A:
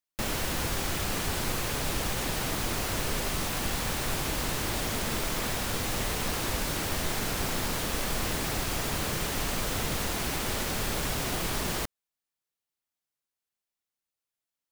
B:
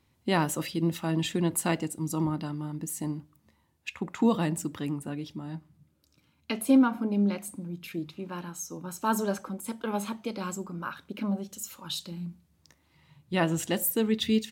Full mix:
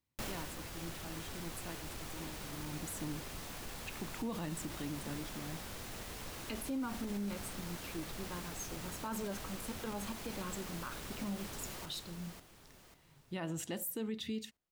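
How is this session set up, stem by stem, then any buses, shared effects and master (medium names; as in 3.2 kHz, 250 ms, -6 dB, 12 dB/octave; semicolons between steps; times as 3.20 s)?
-3.5 dB, 0.00 s, no send, echo send -17 dB, saturation -24.5 dBFS, distortion -17 dB; auto duck -11 dB, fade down 0.55 s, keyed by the second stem
2.45 s -20 dB -> 2.72 s -8 dB, 0.00 s, no send, no echo send, none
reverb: none
echo: feedback delay 543 ms, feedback 40%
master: peak limiter -31 dBFS, peak gain reduction 11 dB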